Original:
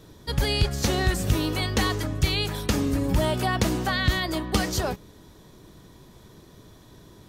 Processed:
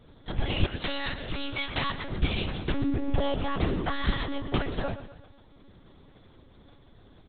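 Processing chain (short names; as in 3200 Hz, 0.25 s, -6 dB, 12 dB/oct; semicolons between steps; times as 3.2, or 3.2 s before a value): 0.66–2.1 tilt +3 dB/oct; comb 3.5 ms, depth 34%; dynamic EQ 140 Hz, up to +6 dB, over -39 dBFS, Q 1.6; feedback echo 0.125 s, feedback 45%, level -12 dB; monotone LPC vocoder at 8 kHz 280 Hz; gain -4.5 dB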